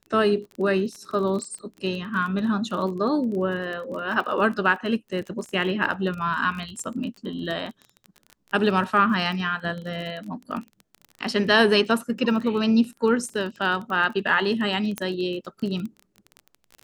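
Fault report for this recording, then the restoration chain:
crackle 24/s -31 dBFS
14.98 pop -12 dBFS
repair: de-click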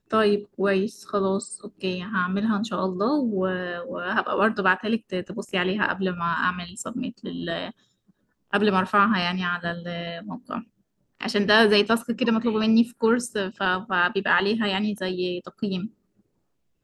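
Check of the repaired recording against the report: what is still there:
14.98 pop

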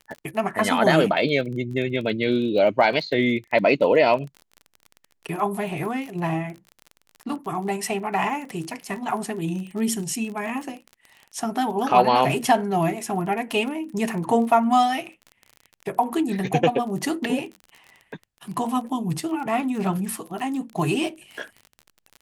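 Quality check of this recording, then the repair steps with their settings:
crackle 28/s -32 dBFS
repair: de-click

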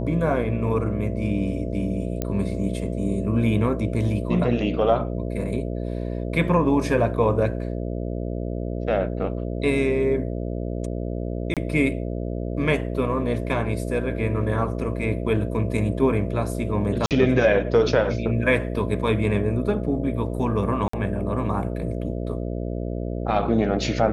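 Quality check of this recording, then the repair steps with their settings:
buzz 60 Hz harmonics 11 -28 dBFS
2.22 pop -11 dBFS
11.54–11.57 gap 27 ms
17.06–17.11 gap 48 ms
20.88–20.93 gap 54 ms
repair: de-click; de-hum 60 Hz, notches 11; interpolate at 11.54, 27 ms; interpolate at 17.06, 48 ms; interpolate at 20.88, 54 ms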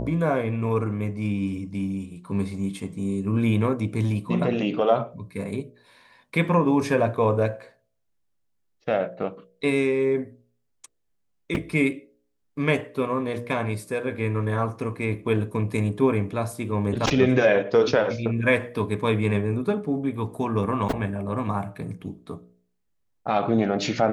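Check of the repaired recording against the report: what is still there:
none

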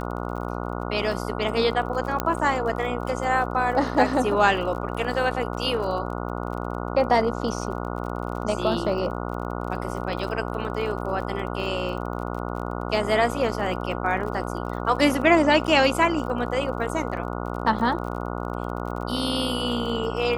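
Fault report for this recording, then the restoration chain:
buzz 60 Hz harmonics 24 -30 dBFS
crackle 42/s -34 dBFS
2.2 pop -8 dBFS
15.67–15.68 gap 8 ms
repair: de-click; de-hum 60 Hz, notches 24; interpolate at 15.67, 8 ms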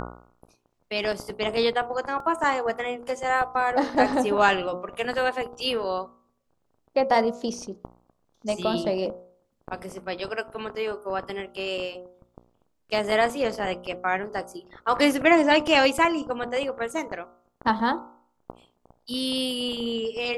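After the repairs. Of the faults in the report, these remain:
2.2 pop

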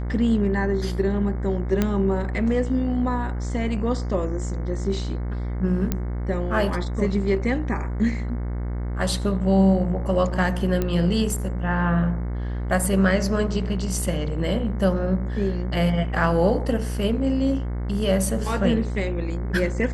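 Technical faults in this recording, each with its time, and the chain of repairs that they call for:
buzz 60 Hz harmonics 37 -27 dBFS
1.82 pop -8 dBFS
5.92 pop -9 dBFS
10.82 pop -11 dBFS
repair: de-click; de-hum 60 Hz, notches 37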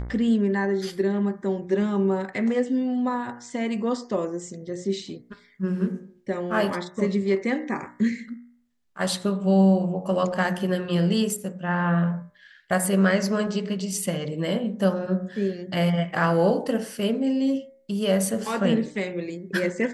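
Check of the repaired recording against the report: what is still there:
none

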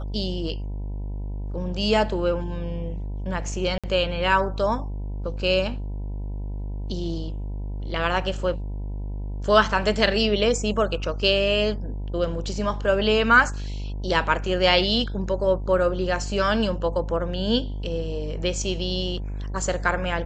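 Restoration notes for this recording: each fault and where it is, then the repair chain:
buzz 50 Hz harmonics 20 -30 dBFS
3.78–3.84 gap 56 ms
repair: de-hum 50 Hz, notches 20; interpolate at 3.78, 56 ms

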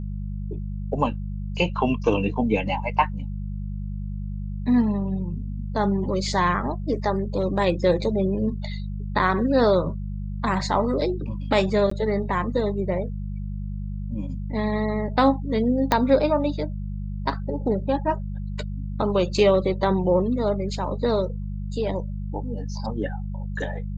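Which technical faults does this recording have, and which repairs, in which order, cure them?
hum 50 Hz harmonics 4 -30 dBFS
11.9–11.91 gap 14 ms
15.92 pop -5 dBFS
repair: de-click; de-hum 50 Hz, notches 4; interpolate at 11.9, 14 ms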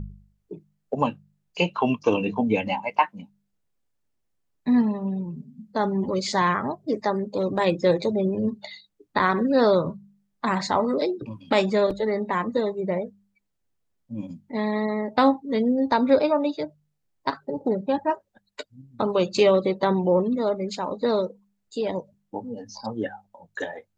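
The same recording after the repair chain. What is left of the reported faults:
15.92 pop

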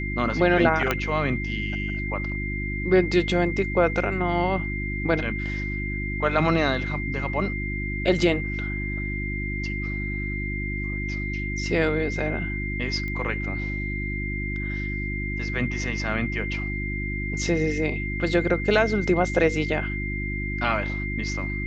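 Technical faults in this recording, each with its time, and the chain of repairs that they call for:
hum 50 Hz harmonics 7 -30 dBFS
tone 2100 Hz -31 dBFS
0.91 pop -8 dBFS
13.08 pop -21 dBFS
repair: de-click; notch 2100 Hz, Q 30; de-hum 50 Hz, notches 7

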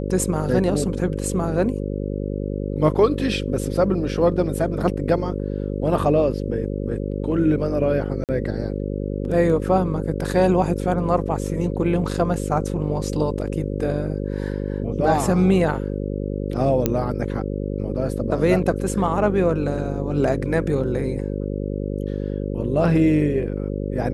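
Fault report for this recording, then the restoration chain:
buzz 50 Hz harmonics 11 -26 dBFS
8.24–8.29 gap 48 ms
16.86 pop -5 dBFS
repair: de-click; de-hum 50 Hz, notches 11; interpolate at 8.24, 48 ms

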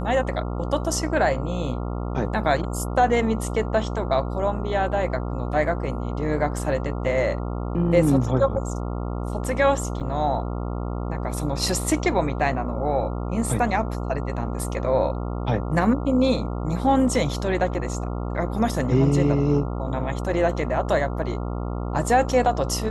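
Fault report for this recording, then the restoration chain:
buzz 60 Hz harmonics 23 -28 dBFS
10–10.01 gap 6.9 ms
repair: de-hum 60 Hz, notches 23; interpolate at 10, 6.9 ms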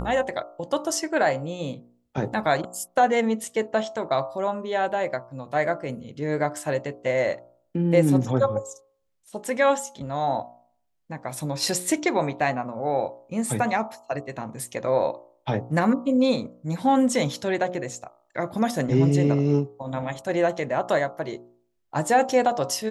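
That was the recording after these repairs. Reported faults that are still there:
none

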